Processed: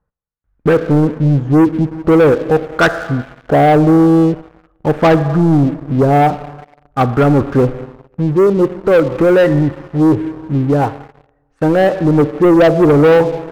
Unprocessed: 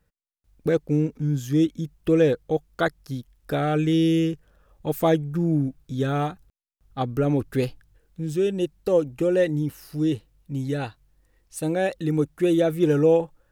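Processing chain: LFO low-pass sine 0.46 Hz 720–1500 Hz; Schroeder reverb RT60 1.6 s, combs from 28 ms, DRR 13.5 dB; waveshaping leveller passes 3; trim +2.5 dB

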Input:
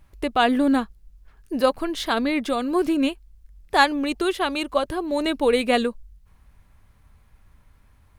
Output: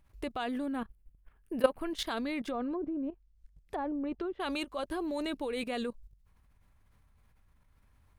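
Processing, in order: 0.66–1.91 s: high-order bell 5.3 kHz -10 dB 1.2 oct; 2.49–4.40 s: low-pass that closes with the level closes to 570 Hz, closed at -17.5 dBFS; level held to a coarse grid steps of 15 dB; trim -4 dB

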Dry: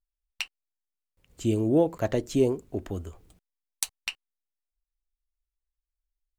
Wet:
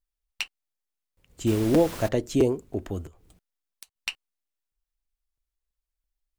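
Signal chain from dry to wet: 1.46–2.07 s: added noise pink -39 dBFS; 3.06–3.96 s: compression 12:1, threshold -47 dBFS, peak gain reduction 24.5 dB; crackling interface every 0.33 s, samples 256, repeat, from 0.42 s; trim +1.5 dB

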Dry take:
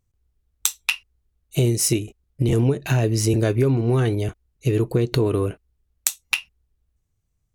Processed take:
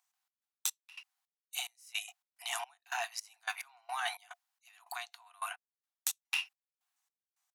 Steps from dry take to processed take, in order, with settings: Chebyshev high-pass 700 Hz, order 10; reverse; compression 8:1, threshold -36 dBFS, peak gain reduction 21 dB; reverse; trance gate "xx.xx..xx..x.." 108 bpm -24 dB; trim +4 dB

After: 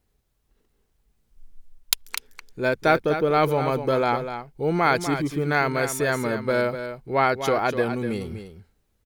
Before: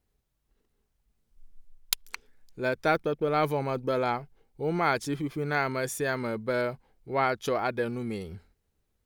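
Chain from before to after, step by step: delay 247 ms -9.5 dB; trim +5.5 dB

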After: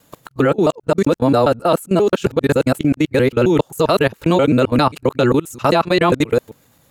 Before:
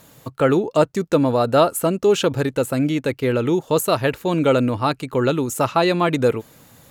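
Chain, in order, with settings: time reversed locally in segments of 133 ms; level held to a coarse grid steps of 21 dB; trim +8 dB

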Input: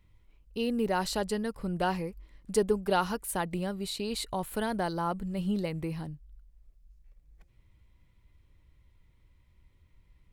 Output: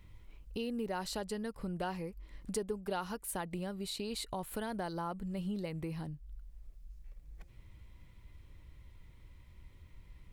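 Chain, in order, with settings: compression 2.5:1, threshold -50 dBFS, peak gain reduction 19 dB; trim +7 dB

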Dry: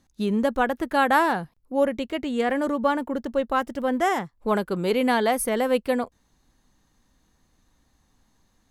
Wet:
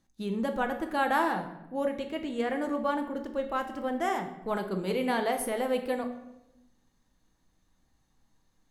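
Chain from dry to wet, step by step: simulated room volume 330 m³, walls mixed, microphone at 0.65 m; trim -8 dB

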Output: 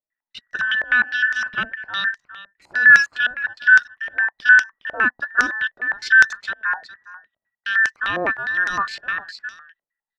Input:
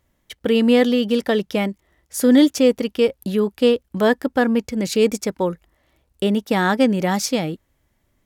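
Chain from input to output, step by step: every band turned upside down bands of 2 kHz; gate with hold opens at -41 dBFS; tempo 0.81×; delay 411 ms -15 dB; step-sequenced low-pass 9.8 Hz 610–5900 Hz; trim -7 dB

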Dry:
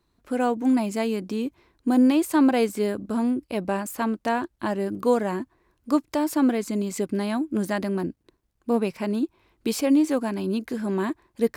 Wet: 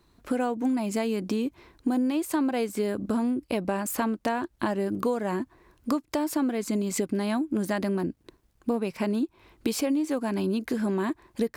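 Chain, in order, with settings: compression 6:1, threshold -32 dBFS, peak gain reduction 16 dB; trim +7.5 dB

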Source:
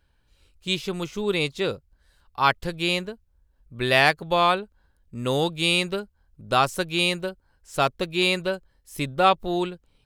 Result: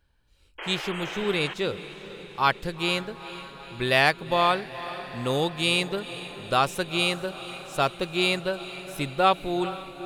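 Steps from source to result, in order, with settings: painted sound noise, 0.58–1.54 s, 290–3300 Hz -34 dBFS; echo that smears into a reverb 458 ms, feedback 64%, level -14 dB; trim -2 dB

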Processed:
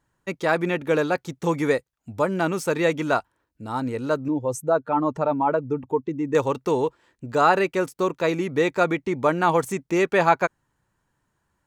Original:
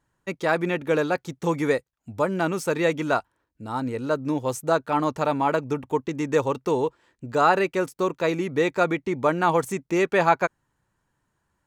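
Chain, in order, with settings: 4.28–6.35 s: spectral contrast enhancement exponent 1.5; trim +1 dB

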